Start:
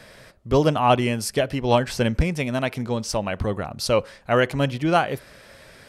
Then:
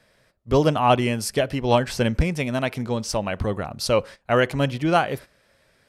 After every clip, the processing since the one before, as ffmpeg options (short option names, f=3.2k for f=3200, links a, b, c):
-af "agate=range=-14dB:threshold=-36dB:ratio=16:detection=peak"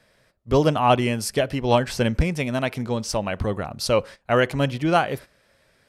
-af anull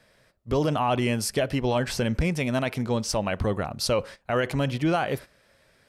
-af "alimiter=limit=-15.5dB:level=0:latency=1:release=34"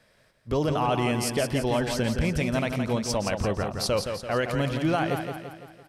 -af "aecho=1:1:169|338|507|676|845|1014:0.473|0.241|0.123|0.0628|0.032|0.0163,volume=-1.5dB"